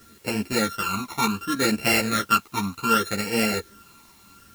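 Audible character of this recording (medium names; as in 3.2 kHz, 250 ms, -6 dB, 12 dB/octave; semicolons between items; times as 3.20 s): a buzz of ramps at a fixed pitch in blocks of 32 samples; phasing stages 12, 0.67 Hz, lowest notch 510–1200 Hz; a quantiser's noise floor 10-bit, dither triangular; a shimmering, thickened sound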